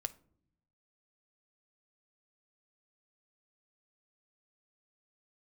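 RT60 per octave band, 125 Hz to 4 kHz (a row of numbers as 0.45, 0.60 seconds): 1.3, 1.1, 0.70, 0.50, 0.35, 0.30 seconds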